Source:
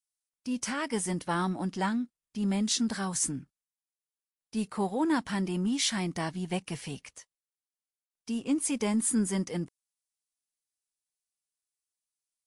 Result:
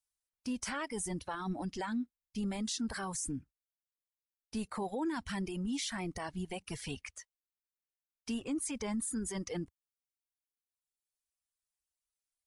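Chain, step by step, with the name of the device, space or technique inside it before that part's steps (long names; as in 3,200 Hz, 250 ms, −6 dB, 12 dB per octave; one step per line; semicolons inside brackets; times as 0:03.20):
car stereo with a boomy subwoofer (low shelf with overshoot 100 Hz +10.5 dB, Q 1.5; brickwall limiter −28 dBFS, peak gain reduction 11.5 dB)
0:06.88–0:08.44: parametric band 2,300 Hz +4 dB 1.4 octaves
reverb reduction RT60 1.8 s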